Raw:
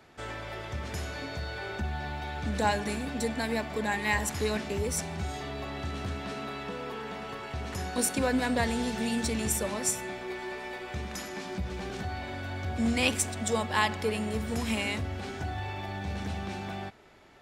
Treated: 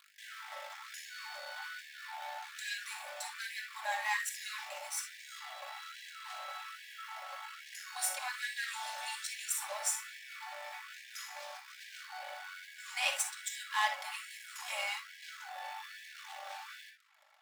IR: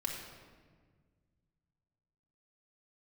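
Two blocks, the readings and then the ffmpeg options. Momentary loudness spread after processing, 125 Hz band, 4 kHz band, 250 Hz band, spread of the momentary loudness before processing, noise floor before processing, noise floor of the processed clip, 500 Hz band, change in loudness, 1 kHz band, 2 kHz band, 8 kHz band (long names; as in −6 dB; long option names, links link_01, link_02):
13 LU, below −40 dB, −4.0 dB, below −40 dB, 10 LU, −40 dBFS, −54 dBFS, −18.0 dB, −7.5 dB, −6.5 dB, −4.5 dB, −4.5 dB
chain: -filter_complex "[0:a]aeval=exprs='val(0)+0.00501*(sin(2*PI*50*n/s)+sin(2*PI*2*50*n/s)/2+sin(2*PI*3*50*n/s)/3+sin(2*PI*4*50*n/s)/4+sin(2*PI*5*50*n/s)/5)':channel_layout=same,asplit=2[link_01][link_02];[link_02]acrusher=bits=4:dc=4:mix=0:aa=0.000001,volume=-5dB[link_03];[link_01][link_03]amix=inputs=2:normalize=0,asubboost=boost=9:cutoff=59,aeval=exprs='max(val(0),0)':channel_layout=same[link_04];[1:a]atrim=start_sample=2205,atrim=end_sample=3528[link_05];[link_04][link_05]afir=irnorm=-1:irlink=0,afftfilt=real='re*gte(b*sr/1024,520*pow(1600/520,0.5+0.5*sin(2*PI*1.2*pts/sr)))':imag='im*gte(b*sr/1024,520*pow(1600/520,0.5+0.5*sin(2*PI*1.2*pts/sr)))':win_size=1024:overlap=0.75,volume=-6.5dB"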